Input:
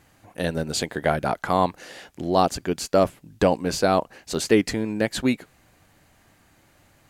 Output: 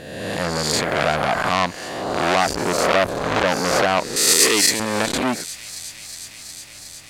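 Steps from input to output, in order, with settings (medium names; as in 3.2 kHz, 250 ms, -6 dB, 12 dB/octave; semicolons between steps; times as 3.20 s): reverse spectral sustain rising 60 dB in 1.20 s; 4.16–4.80 s: tilt EQ +4 dB/octave; feedback echo behind a high-pass 363 ms, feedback 82%, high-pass 2.8 kHz, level -18 dB; loudness maximiser +5 dB; transformer saturation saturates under 2.3 kHz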